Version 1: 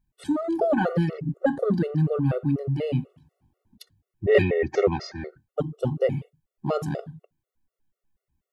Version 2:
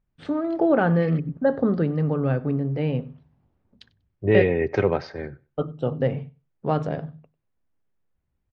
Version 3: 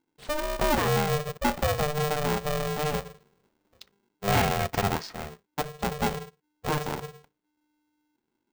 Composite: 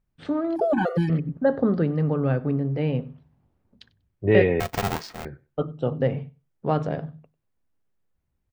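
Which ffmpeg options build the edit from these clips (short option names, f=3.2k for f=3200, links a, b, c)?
-filter_complex "[1:a]asplit=3[a][b][c];[a]atrim=end=0.562[d];[0:a]atrim=start=0.558:end=1.102[e];[b]atrim=start=1.098:end=4.602[f];[2:a]atrim=start=4.598:end=5.252[g];[c]atrim=start=5.248[h];[d][e]acrossfade=d=0.004:c1=hsin:c2=hsin[i];[i][f]acrossfade=d=0.004:c1=hsin:c2=hsin[j];[j][g]acrossfade=d=0.004:c1=hsin:c2=hsin[k];[k][h]acrossfade=d=0.004:c1=hsin:c2=hsin"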